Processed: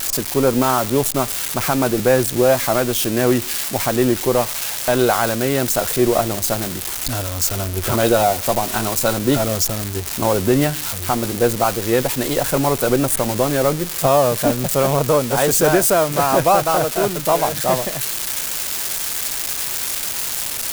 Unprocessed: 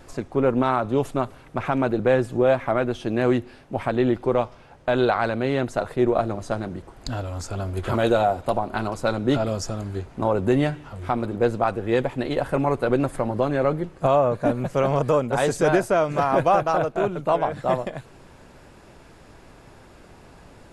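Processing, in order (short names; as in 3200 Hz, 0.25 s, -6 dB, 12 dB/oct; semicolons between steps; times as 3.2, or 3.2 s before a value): switching spikes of -15 dBFS; gain +4 dB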